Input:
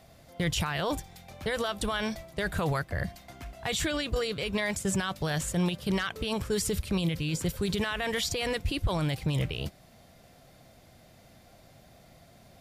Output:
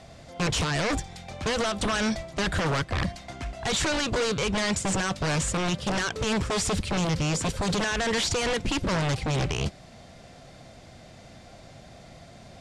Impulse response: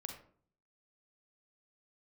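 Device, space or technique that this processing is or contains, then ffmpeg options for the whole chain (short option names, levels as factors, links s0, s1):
synthesiser wavefolder: -af "aeval=exprs='0.0376*(abs(mod(val(0)/0.0376+3,4)-2)-1)':c=same,lowpass=f=8500:w=0.5412,lowpass=f=8500:w=1.3066,volume=2.51"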